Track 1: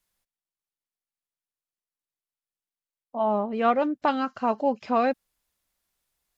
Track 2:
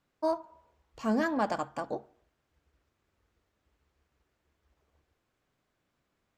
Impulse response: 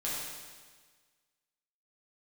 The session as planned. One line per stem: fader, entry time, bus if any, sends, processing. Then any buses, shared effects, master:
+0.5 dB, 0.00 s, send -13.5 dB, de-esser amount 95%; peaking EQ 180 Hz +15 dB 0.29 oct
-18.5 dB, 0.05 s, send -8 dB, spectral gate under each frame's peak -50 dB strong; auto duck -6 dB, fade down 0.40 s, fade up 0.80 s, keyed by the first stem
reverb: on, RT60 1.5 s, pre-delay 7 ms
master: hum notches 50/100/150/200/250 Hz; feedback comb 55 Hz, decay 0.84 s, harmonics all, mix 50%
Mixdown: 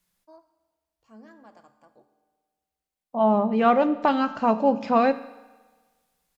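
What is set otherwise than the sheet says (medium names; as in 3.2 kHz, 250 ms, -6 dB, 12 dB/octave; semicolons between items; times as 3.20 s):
stem 1 +0.5 dB -> +7.5 dB; reverb return -7.0 dB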